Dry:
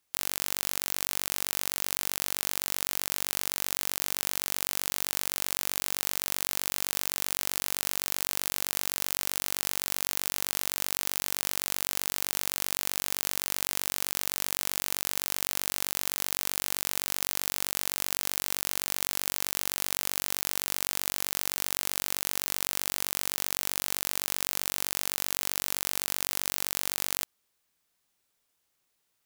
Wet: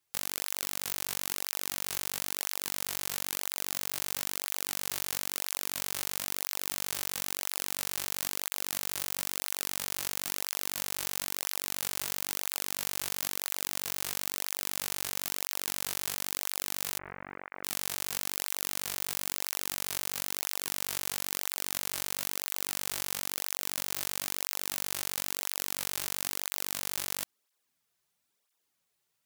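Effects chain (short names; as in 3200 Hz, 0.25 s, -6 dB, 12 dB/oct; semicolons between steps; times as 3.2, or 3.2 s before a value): 16.99–17.64 steep low-pass 2200 Hz 48 dB/oct; tape flanging out of phase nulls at 1 Hz, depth 4.4 ms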